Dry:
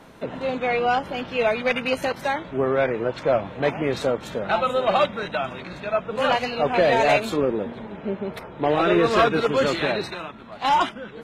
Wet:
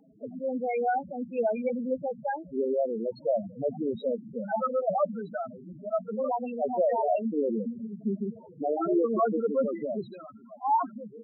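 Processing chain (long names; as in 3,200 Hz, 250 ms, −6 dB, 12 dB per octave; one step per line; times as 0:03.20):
0:01.69–0:02.24: Butterworth low-pass 1,500 Hz 72 dB per octave
dynamic equaliser 220 Hz, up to +8 dB, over −45 dBFS, Q 3.6
spectral peaks only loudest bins 4
level −4.5 dB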